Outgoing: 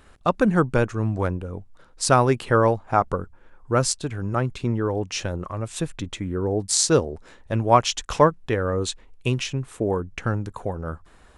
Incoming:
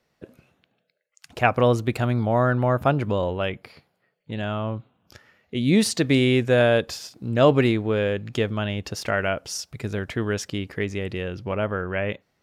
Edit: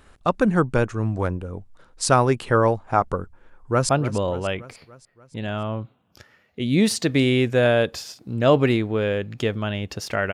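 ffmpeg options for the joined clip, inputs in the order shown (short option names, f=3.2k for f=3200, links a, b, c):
-filter_complex "[0:a]apad=whole_dur=10.33,atrim=end=10.33,atrim=end=3.892[a];[1:a]atrim=start=2.838:end=9.28[b];[a][b]acrossfade=d=0.004:c1=hsin:c2=hsin,asplit=2[c][d];[d]afade=t=in:st=3.48:d=0.01,afade=t=out:st=3.89:d=0.01,aecho=0:1:290|580|870|1160|1450|1740:0.199526|0.119716|0.0718294|0.0430977|0.0258586|0.0155152[e];[c][e]amix=inputs=2:normalize=0"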